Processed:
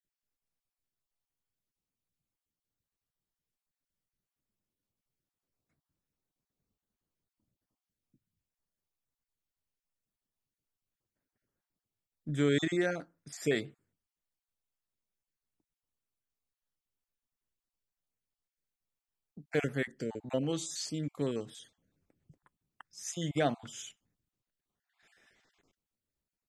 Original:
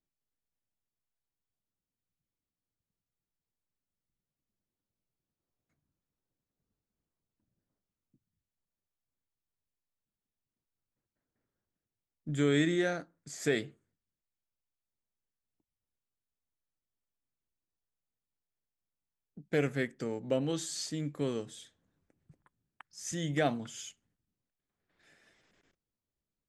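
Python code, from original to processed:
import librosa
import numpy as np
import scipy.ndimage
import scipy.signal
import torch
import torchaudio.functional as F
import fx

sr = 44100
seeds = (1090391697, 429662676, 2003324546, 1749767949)

y = fx.spec_dropout(x, sr, seeds[0], share_pct=22)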